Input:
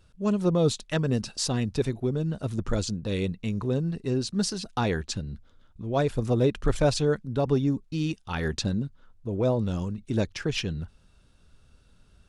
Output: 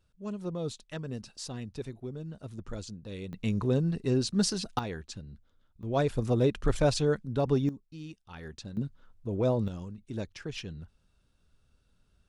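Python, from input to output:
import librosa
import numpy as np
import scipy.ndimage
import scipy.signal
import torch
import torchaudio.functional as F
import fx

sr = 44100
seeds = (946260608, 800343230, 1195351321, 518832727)

y = fx.gain(x, sr, db=fx.steps((0.0, -12.0), (3.33, 0.0), (4.79, -10.5), (5.83, -2.5), (7.69, -15.0), (8.77, -2.5), (9.68, -10.0)))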